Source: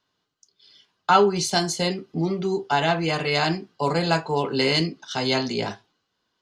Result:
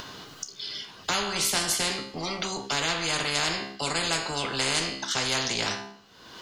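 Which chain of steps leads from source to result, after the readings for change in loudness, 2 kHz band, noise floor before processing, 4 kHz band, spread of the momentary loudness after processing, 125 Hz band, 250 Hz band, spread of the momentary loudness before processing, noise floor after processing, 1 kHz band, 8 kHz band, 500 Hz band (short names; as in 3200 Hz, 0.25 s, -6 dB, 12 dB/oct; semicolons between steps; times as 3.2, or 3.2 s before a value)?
-4.0 dB, -1.5 dB, -76 dBFS, +0.5 dB, 10 LU, -10.0 dB, -10.0 dB, 8 LU, -50 dBFS, -8.0 dB, +5.5 dB, -10.5 dB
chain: upward compressor, threshold -41 dBFS; resonator 67 Hz, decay 0.49 s, harmonics all, mix 60%; spectral compressor 4:1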